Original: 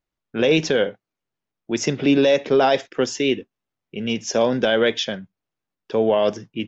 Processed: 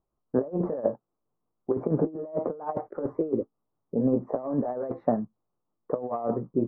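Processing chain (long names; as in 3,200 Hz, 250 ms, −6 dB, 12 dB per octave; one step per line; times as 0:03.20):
pitch shift by two crossfaded delay taps +2 semitones
elliptic low-pass filter 1,200 Hz, stop band 60 dB
compressor whose output falls as the input rises −26 dBFS, ratio −0.5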